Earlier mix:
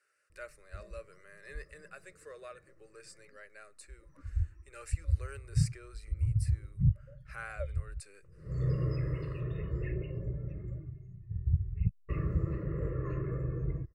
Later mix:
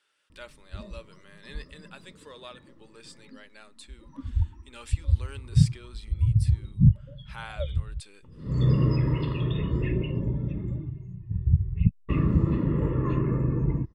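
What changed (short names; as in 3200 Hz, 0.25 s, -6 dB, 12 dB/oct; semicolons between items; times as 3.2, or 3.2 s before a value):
background +5.5 dB; master: remove fixed phaser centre 910 Hz, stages 6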